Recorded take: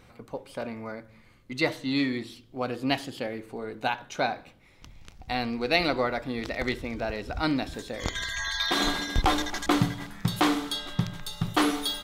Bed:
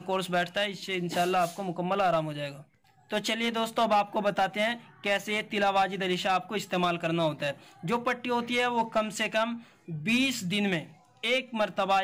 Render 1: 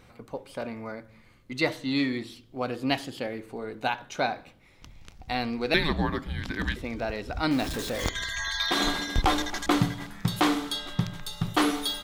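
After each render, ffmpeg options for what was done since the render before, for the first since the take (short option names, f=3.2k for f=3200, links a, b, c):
-filter_complex "[0:a]asettb=1/sr,asplit=3[a][b][c];[a]atrim=end=5.744[d];[b]atrim=start=5.74:end=6.76,asetpts=PTS-STARTPTS,afade=t=in:d=0.004:c=qsin,afade=t=out:st=1.016:d=0.004:c=qsin,afreqshift=-320[e];[c]atrim=start=6.756[f];[d][e]acrossfade=d=0.004:c1=hsin:c2=qsin[g];[g][f]acrossfade=d=0.004:c1=qsin:c2=hsin,asettb=1/sr,asplit=3[h][i][j];[h]atrim=end=7.514[k];[i]atrim=start=7.51:end=8.09,asetpts=PTS-STARTPTS,afade=t=in:d=0.004:c=qsin,afade=t=out:st=0.576:d=0.004:c=qsin,aeval=exprs='val(0)+0.5*0.0282*sgn(val(0))':c=same[l];[j]atrim=start=8.086[m];[k][l]acrossfade=d=0.004:c1=hsin:c2=qsin[n];[n][m]acrossfade=d=0.004:c1=qsin:c2=hsin"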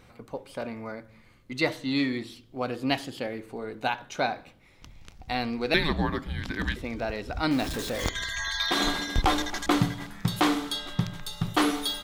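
-af anull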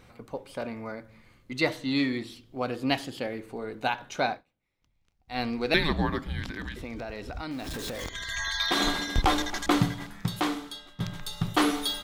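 -filter_complex "[0:a]asettb=1/sr,asplit=3[a][b][c];[a]atrim=end=6.454[d];[b]atrim=start=6.45:end=8.29,asetpts=PTS-STARTPTS,afade=t=in:d=0.004:c=qsin,afade=t=out:st=1.836:d=0.004:c=qsin,acompressor=threshold=-32dB:ratio=6:attack=3.2:release=140:knee=1:detection=peak[e];[c]atrim=start=8.286[f];[d][e]acrossfade=d=0.004:c1=hsin:c2=qsin[g];[g][f]acrossfade=d=0.004:c1=qsin:c2=hsin,asplit=4[h][i][j][k];[h]atrim=end=4.47,asetpts=PTS-STARTPTS,afade=t=out:st=4.32:d=0.15:c=qua:silence=0.0630957[l];[i]atrim=start=4.47:end=5.24,asetpts=PTS-STARTPTS,volume=-24dB[m];[j]atrim=start=5.24:end=11,asetpts=PTS-STARTPTS,afade=t=in:d=0.15:c=qua:silence=0.0630957,afade=t=out:st=4.67:d=1.09:silence=0.141254[n];[k]atrim=start=11,asetpts=PTS-STARTPTS,afade=t=in:d=0.004:c=hsin:silence=0.141254[o];[l][m][n][o]concat=n=4:v=0:a=1"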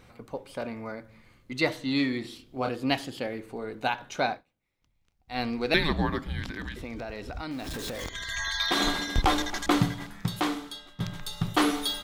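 -filter_complex "[0:a]asettb=1/sr,asplit=3[a][b][c];[a]atrim=end=2.214[d];[b]atrim=start=2.21:end=2.69,asetpts=PTS-STARTPTS,afade=t=in:d=0.004:c=qsin,afade=t=out:st=0.476:d=0.004:c=qsin,asplit=2[e][f];[f]adelay=31,volume=-4dB[g];[e][g]amix=inputs=2:normalize=0,atrim=end_sample=21168[h];[c]atrim=start=2.686[i];[d][h]acrossfade=d=0.004:c1=hsin:c2=qsin[j];[j][i]acrossfade=d=0.004:c1=qsin:c2=hsin"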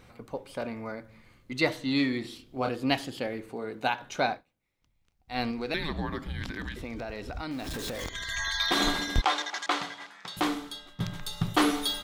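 -filter_complex "[0:a]asettb=1/sr,asplit=3[a][b][c];[a]atrim=end=3.494[d];[b]atrim=start=3.49:end=4.03,asetpts=PTS-STARTPTS,afade=t=in:d=0.004:c=qsin,afade=t=out:st=0.536:d=0.004:c=qsin,highpass=100[e];[c]atrim=start=4.026[f];[d][e]acrossfade=d=0.004:c1=hsin:c2=qsin[g];[g][f]acrossfade=d=0.004:c1=qsin:c2=hsin,asettb=1/sr,asplit=3[h][i][j];[h]atrim=end=5.514[k];[i]atrim=start=5.51:end=6.41,asetpts=PTS-STARTPTS,afade=t=in:d=0.004:c=qsin,afade=t=out:st=0.896:d=0.004:c=qsin,acompressor=threshold=-32dB:ratio=2:attack=3.2:release=140:knee=1:detection=peak[l];[j]atrim=start=6.406[m];[k][l]acrossfade=d=0.004:c1=hsin:c2=qsin[n];[n][m]acrossfade=d=0.004:c1=qsin:c2=hsin,asettb=1/sr,asplit=3[o][p][q];[o]atrim=end=9.214[r];[p]atrim=start=9.21:end=10.37,asetpts=PTS-STARTPTS,afade=t=in:d=0.004:c=qsin,afade=t=out:st=1.156:d=0.004:c=qsin,highpass=670,lowpass=6.3k[s];[q]atrim=start=10.366[t];[r][s]acrossfade=d=0.004:c1=hsin:c2=qsin[u];[u][t]acrossfade=d=0.004:c1=qsin:c2=hsin"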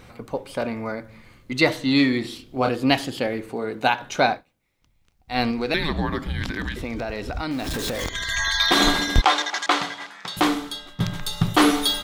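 -af "volume=8dB,alimiter=limit=-3dB:level=0:latency=1"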